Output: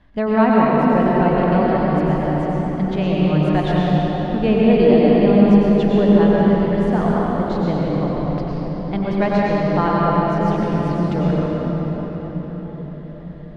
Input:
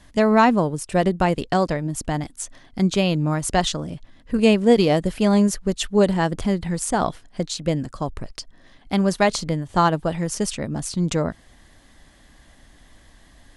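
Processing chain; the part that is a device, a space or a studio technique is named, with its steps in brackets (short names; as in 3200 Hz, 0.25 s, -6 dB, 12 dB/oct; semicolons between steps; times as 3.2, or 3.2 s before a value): cathedral (reverb RT60 5.6 s, pre-delay 89 ms, DRR -6 dB); air absorption 350 m; gain -2.5 dB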